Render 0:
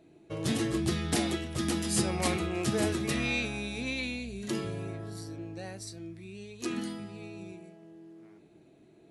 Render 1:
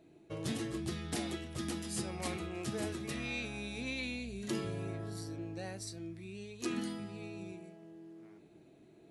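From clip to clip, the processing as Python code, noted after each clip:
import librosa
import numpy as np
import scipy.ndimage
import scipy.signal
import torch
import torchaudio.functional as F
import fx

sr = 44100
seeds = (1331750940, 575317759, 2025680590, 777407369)

y = fx.rider(x, sr, range_db=5, speed_s=0.5)
y = y * librosa.db_to_amplitude(-6.5)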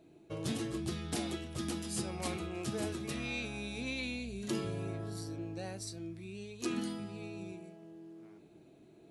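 y = fx.peak_eq(x, sr, hz=1900.0, db=-4.5, octaves=0.32)
y = y * librosa.db_to_amplitude(1.0)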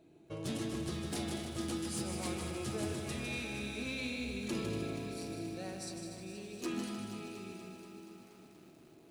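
y = np.clip(x, -10.0 ** (-30.0 / 20.0), 10.0 ** (-30.0 / 20.0))
y = fx.echo_feedback(y, sr, ms=154, feedback_pct=53, wet_db=-6.5)
y = fx.echo_crushed(y, sr, ms=239, feedback_pct=80, bits=10, wet_db=-10)
y = y * librosa.db_to_amplitude(-2.0)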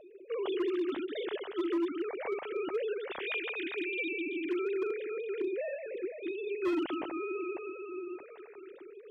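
y = fx.sine_speech(x, sr)
y = fx.rider(y, sr, range_db=4, speed_s=2.0)
y = np.clip(y, -10.0 ** (-31.5 / 20.0), 10.0 ** (-31.5 / 20.0))
y = y * librosa.db_to_amplitude(5.0)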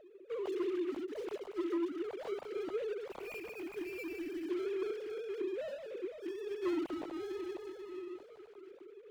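y = scipy.ndimage.median_filter(x, 25, mode='constant')
y = y * librosa.db_to_amplitude(-3.5)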